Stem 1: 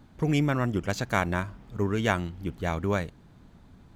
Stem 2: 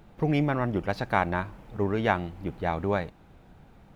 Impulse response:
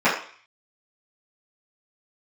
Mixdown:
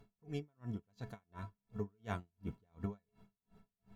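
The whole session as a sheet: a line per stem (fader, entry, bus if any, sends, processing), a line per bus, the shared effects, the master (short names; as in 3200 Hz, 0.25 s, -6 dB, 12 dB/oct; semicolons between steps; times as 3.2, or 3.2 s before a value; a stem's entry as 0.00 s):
-14.0 dB, 0.00 s, no send, bell 110 Hz +8 dB 1.4 oct; notch 7900 Hz, Q 12; random-step tremolo 3.5 Hz, depth 55%
+2.0 dB, 0.00 s, no send, compressor, threshold -29 dBFS, peak gain reduction 11 dB; metallic resonator 200 Hz, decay 0.22 s, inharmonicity 0.03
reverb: off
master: dB-linear tremolo 2.8 Hz, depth 40 dB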